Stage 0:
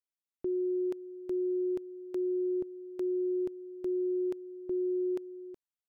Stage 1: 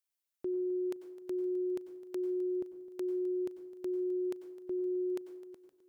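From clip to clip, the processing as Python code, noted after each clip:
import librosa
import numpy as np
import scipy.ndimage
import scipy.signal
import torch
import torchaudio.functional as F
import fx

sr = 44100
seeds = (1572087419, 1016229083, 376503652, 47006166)

y = fx.tilt_eq(x, sr, slope=2.0)
y = fx.echo_feedback(y, sr, ms=259, feedback_pct=52, wet_db=-17.5)
y = fx.rev_plate(y, sr, seeds[0], rt60_s=0.55, hf_ratio=0.7, predelay_ms=85, drr_db=11.5)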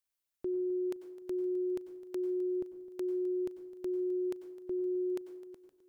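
y = fx.low_shelf(x, sr, hz=80.0, db=10.0)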